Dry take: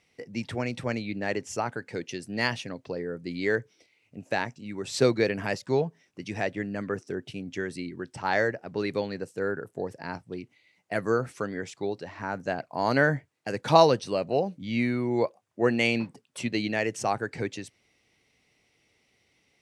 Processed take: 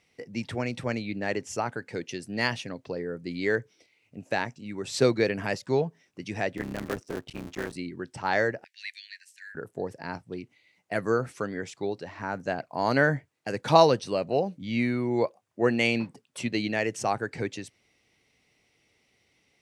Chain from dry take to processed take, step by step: 6.57–7.76 cycle switcher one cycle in 3, muted; 8.64–9.55 steep high-pass 1700 Hz 96 dB/oct

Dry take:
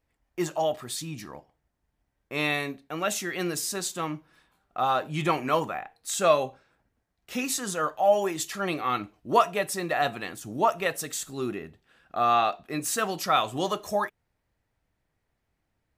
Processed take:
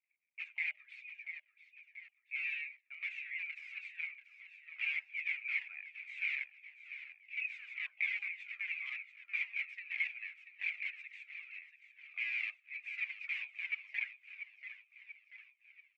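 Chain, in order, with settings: CVSD 64 kbps; wrapped overs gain 20.5 dB; Butterworth band-pass 2300 Hz, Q 6; on a send: feedback echo 0.686 s, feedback 52%, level -11.5 dB; on the sum: cascading flanger falling 1.8 Hz; gain +6.5 dB

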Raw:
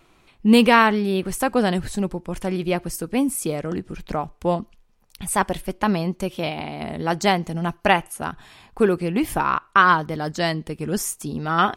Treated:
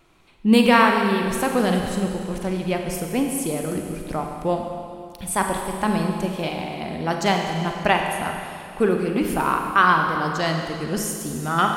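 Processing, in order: Schroeder reverb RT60 2.4 s, combs from 33 ms, DRR 2.5 dB; gain -2 dB

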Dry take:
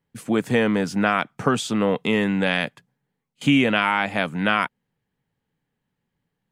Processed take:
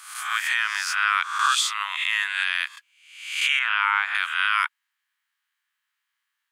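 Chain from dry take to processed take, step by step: spectral swells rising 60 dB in 0.73 s; steep high-pass 1100 Hz 48 dB/oct; 3.59–4.15 tilt -4.5 dB/oct; limiter -14.5 dBFS, peak gain reduction 7.5 dB; gain +4.5 dB

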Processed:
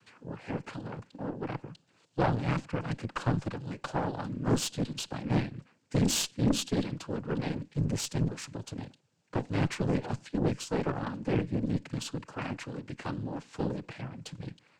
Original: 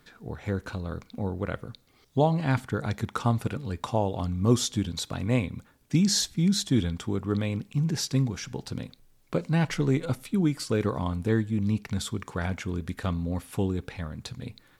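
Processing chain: noise vocoder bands 8; added harmonics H 2 -7 dB, 6 -23 dB, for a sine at -8.5 dBFS; soft clip -12.5 dBFS, distortion -16 dB; gain -3.5 dB

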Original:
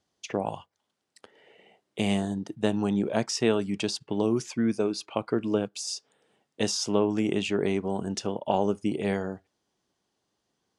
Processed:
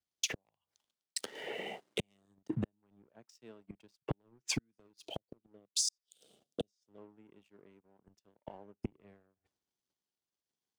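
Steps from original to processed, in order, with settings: flipped gate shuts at -23 dBFS, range -42 dB; compressor 12:1, threshold -53 dBFS, peak gain reduction 24 dB; 5.05–6.98 Chebyshev band-stop 680–3200 Hz, order 3; sample leveller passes 2; three-band expander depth 100%; gain +7.5 dB

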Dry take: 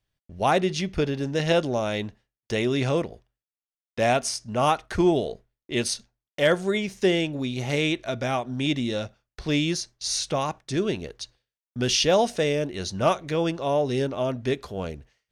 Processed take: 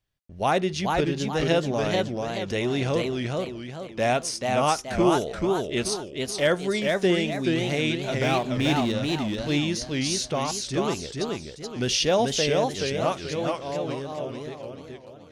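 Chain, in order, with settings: ending faded out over 3.29 s; 8.14–8.92 power-law curve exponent 0.7; warbling echo 0.431 s, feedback 40%, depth 177 cents, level -3 dB; gain -1.5 dB

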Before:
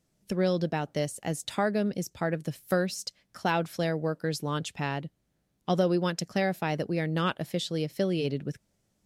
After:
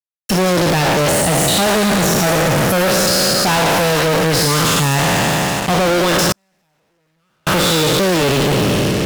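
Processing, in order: spectral trails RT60 2.52 s; fuzz box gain 48 dB, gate -45 dBFS; 6.32–7.47 gate -5 dBFS, range -49 dB

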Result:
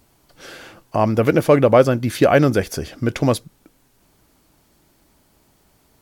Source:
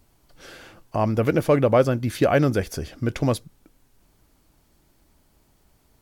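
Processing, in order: low shelf 67 Hz -11.5 dB; gain +5.5 dB

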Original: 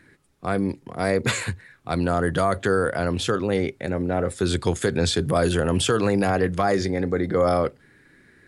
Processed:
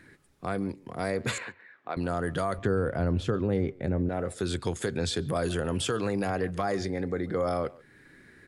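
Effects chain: 2.58–4.09 tilt -3 dB/oct; compressor 1.5:1, threshold -40 dBFS, peak gain reduction 10 dB; 1.38–1.97 BPF 380–2400 Hz; speakerphone echo 0.14 s, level -21 dB

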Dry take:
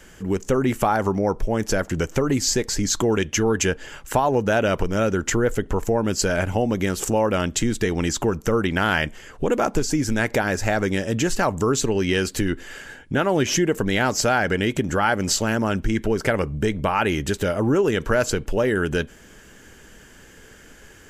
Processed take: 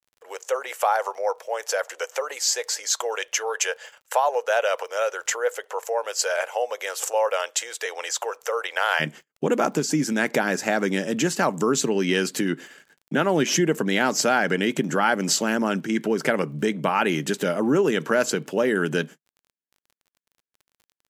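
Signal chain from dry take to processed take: gate -35 dBFS, range -57 dB; Chebyshev high-pass 490 Hz, order 5, from 8.99 s 150 Hz; crackle 33/s -44 dBFS

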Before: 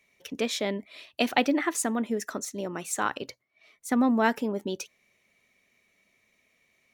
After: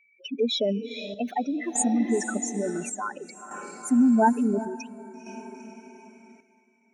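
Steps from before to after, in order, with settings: spectral contrast raised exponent 3.6; diffused feedback echo 0.458 s, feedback 46%, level -11 dB; chopper 0.57 Hz, depth 60%, duty 65%; gain +5 dB

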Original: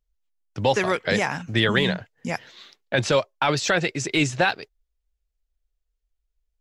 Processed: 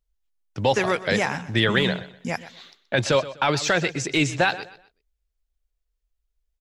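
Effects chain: feedback echo 0.125 s, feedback 29%, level -16 dB

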